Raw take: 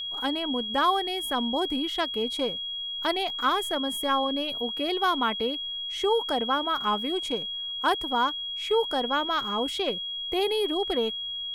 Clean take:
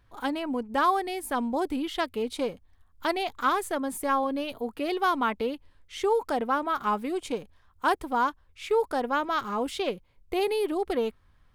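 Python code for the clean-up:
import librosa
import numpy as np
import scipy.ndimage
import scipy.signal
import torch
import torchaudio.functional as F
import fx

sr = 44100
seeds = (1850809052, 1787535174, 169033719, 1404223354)

y = fx.notch(x, sr, hz=3300.0, q=30.0)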